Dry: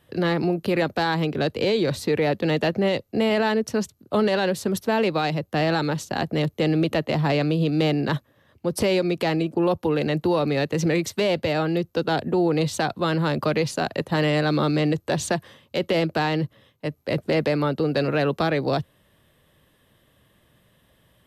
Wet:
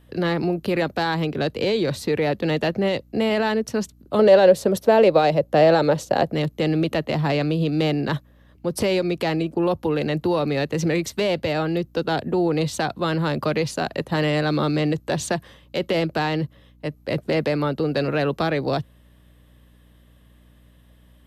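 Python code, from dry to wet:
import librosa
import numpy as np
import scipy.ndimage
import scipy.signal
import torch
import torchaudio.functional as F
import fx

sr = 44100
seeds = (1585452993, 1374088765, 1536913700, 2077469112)

y = fx.peak_eq(x, sr, hz=560.0, db=13.0, octaves=0.82, at=(4.19, 6.31))
y = fx.add_hum(y, sr, base_hz=60, snr_db=31)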